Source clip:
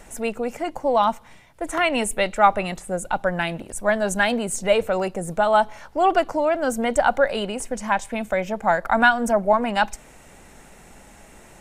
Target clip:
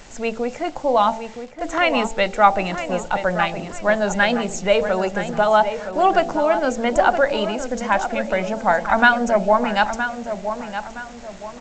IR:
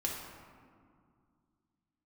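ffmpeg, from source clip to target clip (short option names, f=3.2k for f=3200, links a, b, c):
-filter_complex "[0:a]bandreject=f=56.05:t=h:w=4,bandreject=f=112.1:t=h:w=4,bandreject=f=168.15:t=h:w=4,bandreject=f=224.2:t=h:w=4,bandreject=f=280.25:t=h:w=4,bandreject=f=336.3:t=h:w=4,bandreject=f=392.35:t=h:w=4,bandreject=f=448.4:t=h:w=4,bandreject=f=504.45:t=h:w=4,bandreject=f=560.5:t=h:w=4,bandreject=f=616.55:t=h:w=4,bandreject=f=672.6:t=h:w=4,bandreject=f=728.65:t=h:w=4,bandreject=f=784.7:t=h:w=4,bandreject=f=840.75:t=h:w=4,bandreject=f=896.8:t=h:w=4,aresample=16000,acrusher=bits=7:mix=0:aa=0.000001,aresample=44100,asplit=2[a][b];[b]adelay=968,lowpass=f=2.6k:p=1,volume=-9dB,asplit=2[c][d];[d]adelay=968,lowpass=f=2.6k:p=1,volume=0.37,asplit=2[e][f];[f]adelay=968,lowpass=f=2.6k:p=1,volume=0.37,asplit=2[g][h];[h]adelay=968,lowpass=f=2.6k:p=1,volume=0.37[i];[a][c][e][g][i]amix=inputs=5:normalize=0,volume=2.5dB"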